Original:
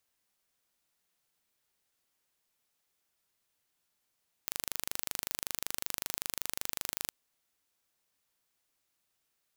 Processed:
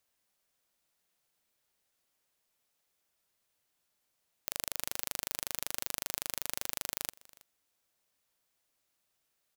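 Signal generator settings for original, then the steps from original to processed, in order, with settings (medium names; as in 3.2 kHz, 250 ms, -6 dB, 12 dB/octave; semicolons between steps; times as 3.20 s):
pulse train 25.3 per s, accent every 0, -6.5 dBFS 2.61 s
peaking EQ 600 Hz +3.5 dB 0.52 oct; delay 323 ms -22 dB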